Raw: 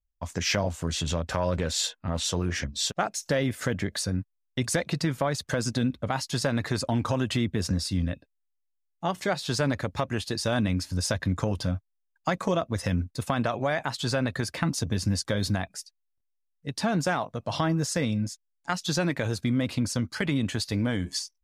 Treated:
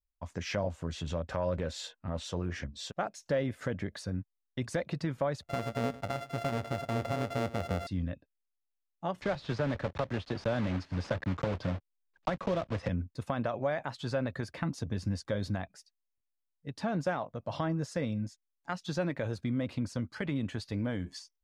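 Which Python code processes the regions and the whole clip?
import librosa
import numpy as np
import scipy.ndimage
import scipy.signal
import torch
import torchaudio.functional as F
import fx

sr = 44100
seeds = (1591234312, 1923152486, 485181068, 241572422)

y = fx.chain(x, sr, fx.sample_sort(block=64),
    fx.echo_single(ms=101, db=-17.0), at=(5.42, 7.87))
y = fx.chain(y, sr, fx.block_float(bits=3),
    fx.lowpass(hz=4700.0, slope=12),
    fx.band_squash(depth_pct=70), at=(9.21, 12.89))
y = fx.lowpass(y, sr, hz=2100.0, slope=6)
y = fx.dynamic_eq(y, sr, hz=560.0, q=4.7, threshold_db=-41.0, ratio=4.0, max_db=5)
y = y * 10.0 ** (-6.5 / 20.0)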